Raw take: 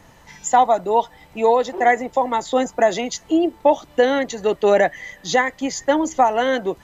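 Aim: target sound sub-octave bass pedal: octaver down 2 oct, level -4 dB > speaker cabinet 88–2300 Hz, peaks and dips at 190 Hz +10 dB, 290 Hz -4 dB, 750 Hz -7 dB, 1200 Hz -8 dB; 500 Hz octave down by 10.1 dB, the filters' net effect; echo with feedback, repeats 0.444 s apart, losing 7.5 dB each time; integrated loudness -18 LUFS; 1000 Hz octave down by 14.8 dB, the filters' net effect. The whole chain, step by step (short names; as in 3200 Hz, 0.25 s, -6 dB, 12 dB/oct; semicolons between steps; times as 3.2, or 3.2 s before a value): bell 500 Hz -8 dB; bell 1000 Hz -9 dB; feedback echo 0.444 s, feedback 42%, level -7.5 dB; octaver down 2 oct, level -4 dB; speaker cabinet 88–2300 Hz, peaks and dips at 190 Hz +10 dB, 290 Hz -4 dB, 750 Hz -7 dB, 1200 Hz -8 dB; gain +9 dB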